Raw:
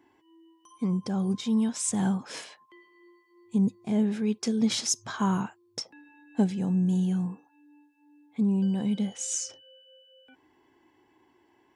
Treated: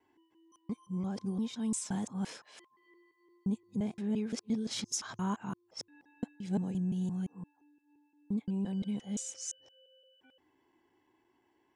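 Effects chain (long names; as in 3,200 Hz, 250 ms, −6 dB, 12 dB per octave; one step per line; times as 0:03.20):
reversed piece by piece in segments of 173 ms
level −8 dB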